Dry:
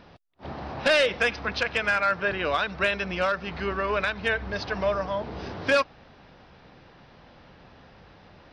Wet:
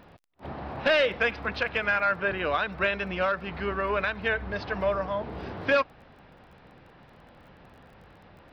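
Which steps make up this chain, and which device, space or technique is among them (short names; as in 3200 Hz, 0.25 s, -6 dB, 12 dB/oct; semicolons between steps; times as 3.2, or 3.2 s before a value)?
lo-fi chain (LPF 3200 Hz 12 dB/oct; wow and flutter 23 cents; crackle 23/s -48 dBFS); gain -1 dB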